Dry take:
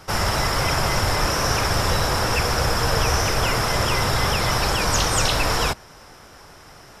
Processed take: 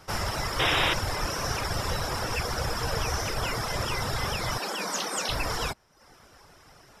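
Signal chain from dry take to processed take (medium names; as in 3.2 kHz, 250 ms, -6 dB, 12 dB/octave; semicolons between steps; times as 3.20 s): 4.58–5.29 s: elliptic high-pass 180 Hz; reverb removal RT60 0.67 s; 0.59–0.94 s: painted sound noise 280–3900 Hz -18 dBFS; trim -7 dB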